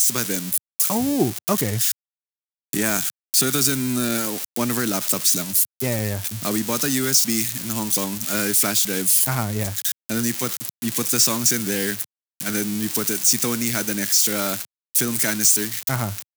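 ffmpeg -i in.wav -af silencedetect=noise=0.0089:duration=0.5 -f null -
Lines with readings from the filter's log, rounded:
silence_start: 1.92
silence_end: 2.73 | silence_duration: 0.81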